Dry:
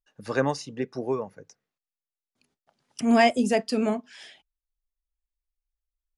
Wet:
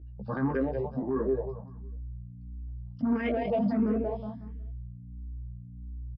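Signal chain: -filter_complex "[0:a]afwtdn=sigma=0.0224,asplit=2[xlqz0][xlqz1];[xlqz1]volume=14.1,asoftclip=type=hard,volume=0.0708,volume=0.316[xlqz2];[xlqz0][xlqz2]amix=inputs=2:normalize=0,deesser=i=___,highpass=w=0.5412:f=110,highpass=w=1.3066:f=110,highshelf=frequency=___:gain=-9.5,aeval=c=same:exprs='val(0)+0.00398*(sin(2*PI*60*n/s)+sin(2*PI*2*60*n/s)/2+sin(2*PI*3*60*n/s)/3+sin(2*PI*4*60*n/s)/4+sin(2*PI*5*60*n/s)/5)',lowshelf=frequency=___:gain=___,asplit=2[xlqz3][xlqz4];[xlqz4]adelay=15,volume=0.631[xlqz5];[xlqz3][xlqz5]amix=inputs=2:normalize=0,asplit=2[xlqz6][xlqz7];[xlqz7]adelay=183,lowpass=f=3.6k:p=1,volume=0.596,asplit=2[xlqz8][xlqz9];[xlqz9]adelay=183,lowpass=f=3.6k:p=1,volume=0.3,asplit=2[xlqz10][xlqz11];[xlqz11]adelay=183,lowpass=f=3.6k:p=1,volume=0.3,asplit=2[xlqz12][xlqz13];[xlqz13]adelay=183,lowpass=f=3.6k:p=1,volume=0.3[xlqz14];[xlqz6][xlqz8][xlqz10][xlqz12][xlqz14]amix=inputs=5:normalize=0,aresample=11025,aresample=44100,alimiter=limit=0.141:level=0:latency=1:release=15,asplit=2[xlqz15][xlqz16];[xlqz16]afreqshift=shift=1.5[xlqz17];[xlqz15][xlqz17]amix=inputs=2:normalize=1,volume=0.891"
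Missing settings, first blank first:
0.75, 2.7k, 430, 5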